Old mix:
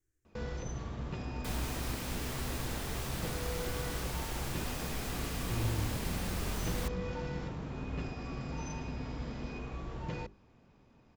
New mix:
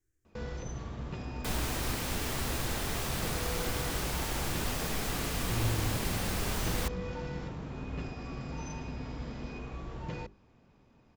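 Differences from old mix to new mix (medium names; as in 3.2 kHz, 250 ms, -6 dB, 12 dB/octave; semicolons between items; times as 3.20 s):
speech: send +7.0 dB; second sound +5.5 dB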